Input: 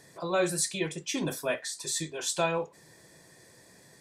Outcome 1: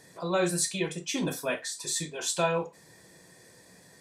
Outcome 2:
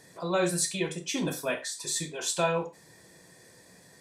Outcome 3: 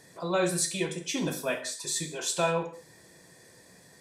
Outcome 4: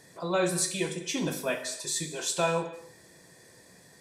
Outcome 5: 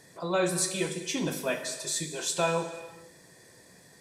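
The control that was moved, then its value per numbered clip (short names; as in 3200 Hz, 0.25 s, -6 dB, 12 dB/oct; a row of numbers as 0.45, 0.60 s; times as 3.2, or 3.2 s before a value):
non-linear reverb, gate: 80, 120, 220, 320, 510 ms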